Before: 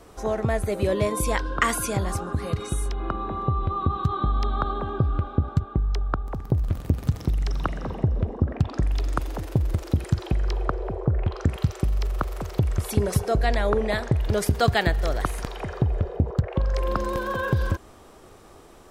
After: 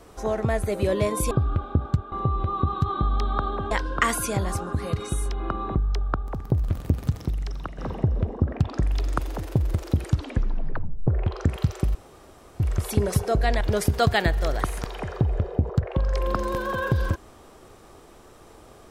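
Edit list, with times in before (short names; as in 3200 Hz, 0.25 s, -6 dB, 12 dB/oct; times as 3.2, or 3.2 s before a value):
1.31–3.35 swap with 4.94–5.75
6.94–7.78 fade out, to -10 dB
10.03 tape stop 1.04 s
11.95–12.6 room tone
13.61–14.22 cut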